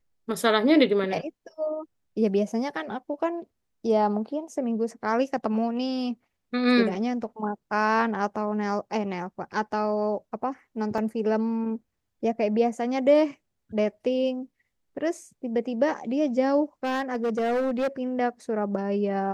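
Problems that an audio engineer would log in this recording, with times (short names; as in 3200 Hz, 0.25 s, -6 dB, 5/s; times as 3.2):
10.98 gap 2.6 ms
16.84–17.88 clipped -22 dBFS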